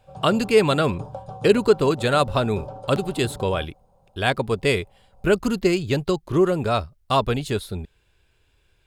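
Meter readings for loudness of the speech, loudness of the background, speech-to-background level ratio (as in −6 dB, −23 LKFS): −22.0 LKFS, −38.0 LKFS, 16.0 dB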